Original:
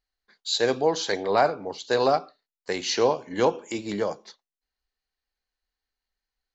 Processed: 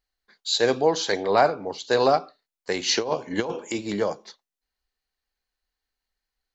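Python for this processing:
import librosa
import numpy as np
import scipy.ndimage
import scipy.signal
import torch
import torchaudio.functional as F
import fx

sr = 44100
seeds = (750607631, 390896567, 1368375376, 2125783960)

y = fx.over_compress(x, sr, threshold_db=-24.0, ratio=-0.5, at=(2.87, 3.71), fade=0.02)
y = y * 10.0 ** (2.0 / 20.0)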